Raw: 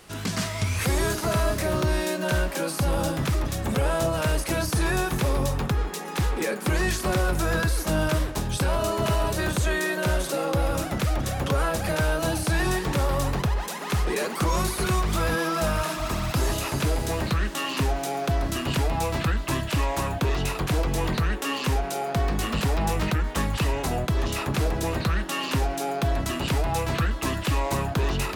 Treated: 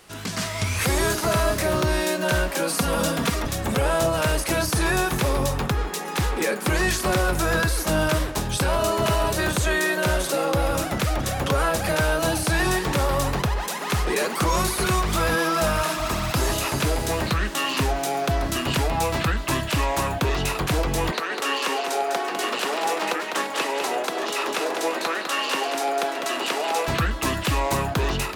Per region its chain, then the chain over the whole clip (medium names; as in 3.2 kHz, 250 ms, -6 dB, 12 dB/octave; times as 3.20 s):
2.69–3.45 s: high-pass 76 Hz + comb 4.3 ms, depth 83%
21.11–26.88 s: high-pass 320 Hz 24 dB/octave + treble shelf 12 kHz -9.5 dB + multi-tap echo 202/827 ms -5.5/-14 dB
whole clip: level rider gain up to 4.5 dB; bass shelf 300 Hz -5 dB